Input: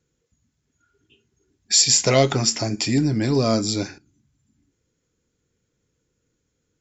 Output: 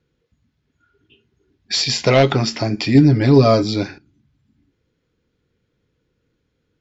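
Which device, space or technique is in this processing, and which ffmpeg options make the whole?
synthesiser wavefolder: -filter_complex "[0:a]aeval=exprs='0.398*(abs(mod(val(0)/0.398+3,4)-2)-1)':c=same,lowpass=f=4.4k:w=0.5412,lowpass=f=4.4k:w=1.3066,asettb=1/sr,asplit=3[a][b][c];[a]atrim=end=2.944[d];[b]atrim=start=2.94:end=3.63,asetpts=PTS-STARTPTS,afade=t=in:d=0.004:c=qsin,afade=t=out:st=0.686:d=0.004:c=qsin,aecho=1:1:7.2:0.82,atrim=end_sample=30429[e];[c]atrim=start=3.626[f];[d][e]acrossfade=d=0.004:c1=hsin:c2=qsin[g];[g][f]acrossfade=d=0.004:c1=qsin:c2=hsin,volume=4.5dB"

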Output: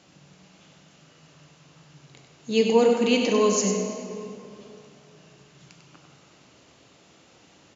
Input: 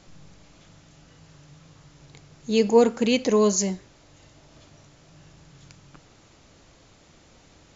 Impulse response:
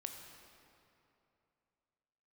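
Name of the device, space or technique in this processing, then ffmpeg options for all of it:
PA in a hall: -filter_complex "[0:a]highpass=140,equalizer=f=2.8k:t=o:w=0.25:g=5.5,aecho=1:1:97:0.447[a];[1:a]atrim=start_sample=2205[b];[a][b]afir=irnorm=-1:irlink=0,volume=2dB"

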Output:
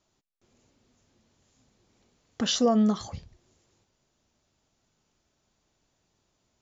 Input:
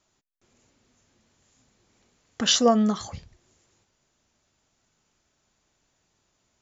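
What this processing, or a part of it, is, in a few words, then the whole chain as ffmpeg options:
clipper into limiter: -af "asoftclip=type=hard:threshold=-9dB,alimiter=limit=-13.5dB:level=0:latency=1:release=71,lowpass=6k,equalizer=f=1.8k:t=o:w=1.8:g=-5"

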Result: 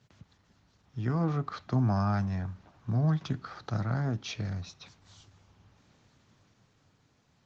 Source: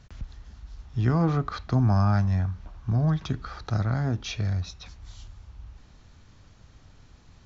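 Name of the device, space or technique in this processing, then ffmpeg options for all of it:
video call: -af "highpass=f=110:w=0.5412,highpass=f=110:w=1.3066,dynaudnorm=f=210:g=13:m=5dB,volume=-7.5dB" -ar 48000 -c:a libopus -b:a 16k

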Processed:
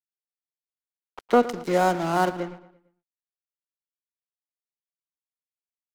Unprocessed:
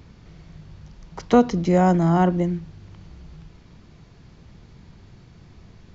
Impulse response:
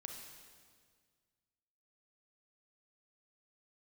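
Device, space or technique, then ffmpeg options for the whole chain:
pocket radio on a weak battery: -filter_complex "[0:a]highpass=330,lowpass=4.2k,aeval=exprs='sgn(val(0))*max(abs(val(0))-0.0178,0)':c=same,equalizer=f=1.4k:t=o:w=0.21:g=5,asettb=1/sr,asplit=3[a][b][c];[a]atrim=end=1.434[d];[b]atrim=start=1.43:end=2.4,asetpts=PTS-STARTPTS,afade=t=in:d=0.004:c=qsin,afade=t=out:st=0.966:d=0.004:c=qsin,highshelf=f=4.1k:g=11.5[e];[c]atrim=start=2.396[f];[d][e]acrossfade=d=0.004:c1=hsin:c2=qsin[g];[g][f]acrossfade=d=0.004:c1=qsin:c2=hsin,asplit=2[h][i];[i]adelay=113,lowpass=f=4.3k:p=1,volume=-16dB,asplit=2[j][k];[k]adelay=113,lowpass=f=4.3k:p=1,volume=0.45,asplit=2[l][m];[m]adelay=113,lowpass=f=4.3k:p=1,volume=0.45,asplit=2[n][o];[o]adelay=113,lowpass=f=4.3k:p=1,volume=0.45[p];[h][j][l][n][p]amix=inputs=5:normalize=0"

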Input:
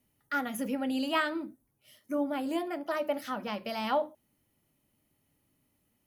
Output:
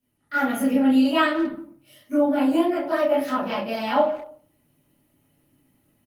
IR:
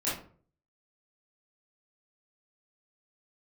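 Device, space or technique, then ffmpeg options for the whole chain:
speakerphone in a meeting room: -filter_complex "[1:a]atrim=start_sample=2205[a];[0:a][a]afir=irnorm=-1:irlink=0,asplit=2[b][c];[c]adelay=190,highpass=300,lowpass=3.4k,asoftclip=type=hard:threshold=-16.5dB,volume=-17dB[d];[b][d]amix=inputs=2:normalize=0,dynaudnorm=f=210:g=3:m=8dB,volume=-5.5dB" -ar 48000 -c:a libopus -b:a 32k

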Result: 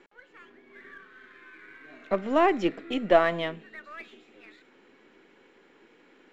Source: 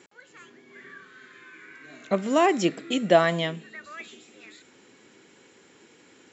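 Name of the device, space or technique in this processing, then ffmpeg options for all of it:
crystal radio: -af "highpass=220,lowpass=2.6k,aeval=exprs='if(lt(val(0),0),0.708*val(0),val(0))':c=same"

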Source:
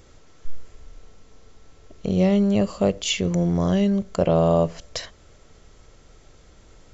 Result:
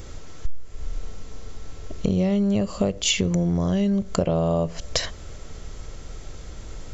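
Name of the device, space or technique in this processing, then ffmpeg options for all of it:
ASMR close-microphone chain: -af "lowshelf=f=130:g=7,acompressor=threshold=-28dB:ratio=6,highshelf=f=6.7k:g=4.5,volume=8.5dB"

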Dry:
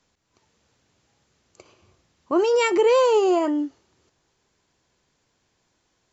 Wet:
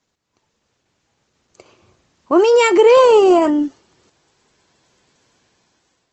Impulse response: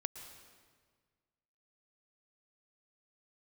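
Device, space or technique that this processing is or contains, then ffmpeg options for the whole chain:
video call: -filter_complex "[0:a]asettb=1/sr,asplit=3[a][b][c];[a]atrim=end=2.914[d];[b]atrim=start=2.91:end=3.42,asetpts=PTS-STARTPTS,afade=t=in:d=0.004:c=qsin,afade=t=out:st=0.506:d=0.004:c=qsin,bass=f=250:g=2,treble=f=4k:g=-4[e];[c]atrim=start=3.416[f];[d][e]acrossfade=d=0.004:c1=hsin:c2=qsin[g];[g][f]acrossfade=d=0.004:c1=qsin:c2=hsin,highpass=f=100:p=1,dynaudnorm=f=590:g=5:m=14dB" -ar 48000 -c:a libopus -b:a 16k

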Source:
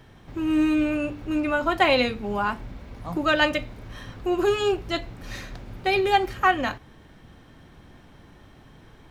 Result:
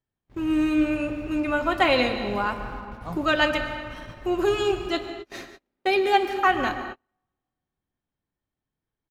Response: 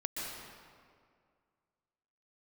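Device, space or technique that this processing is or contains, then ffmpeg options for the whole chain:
keyed gated reverb: -filter_complex "[0:a]asettb=1/sr,asplit=3[a][b][c];[a]atrim=end=4.874[d];[b]atrim=start=4.87:end=6.47,asetpts=PTS-STARTPTS,afade=t=in:d=0.004:c=qsin,afade=t=out:st=1.596:d=0.004:c=qsin,lowshelf=f=180:t=q:w=1.5:g=-13.5[e];[c]atrim=start=6.466[f];[d][e]acrossfade=d=0.004:c1=hsin:c2=qsin[g];[g][f]acrossfade=d=0.004:c1=qsin:c2=hsin,agate=range=-34dB:threshold=-38dB:ratio=16:detection=peak,aecho=1:1:105:0.0794,asplit=3[h][i][j];[1:a]atrim=start_sample=2205[k];[i][k]afir=irnorm=-1:irlink=0[l];[j]apad=whole_len=405974[m];[l][m]sidechaingate=range=-40dB:threshold=-52dB:ratio=16:detection=peak,volume=-7dB[n];[h][n]amix=inputs=2:normalize=0,volume=-3.5dB"

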